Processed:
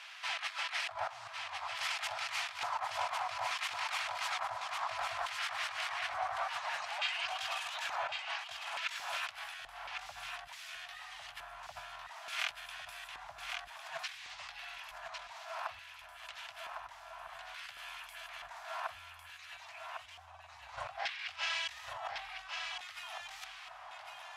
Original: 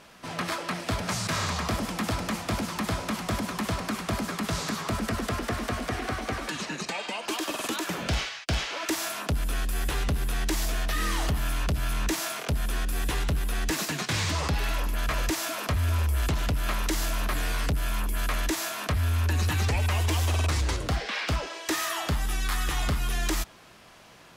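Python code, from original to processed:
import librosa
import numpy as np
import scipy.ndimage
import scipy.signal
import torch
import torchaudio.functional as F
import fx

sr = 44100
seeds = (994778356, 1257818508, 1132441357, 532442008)

p1 = scipy.signal.sosfilt(scipy.signal.ellip(3, 1.0, 40, [110.0, 710.0], 'bandstop', fs=sr, output='sos'), x)
p2 = fx.low_shelf(p1, sr, hz=150.0, db=-8.5)
p3 = fx.over_compress(p2, sr, threshold_db=-38.0, ratio=-0.5)
p4 = fx.filter_lfo_bandpass(p3, sr, shape='square', hz=0.57, low_hz=790.0, high_hz=2600.0, q=1.2)
p5 = p4 + fx.echo_single(p4, sr, ms=1103, db=-5.5, dry=0)
y = p5 * librosa.db_to_amplitude(2.0)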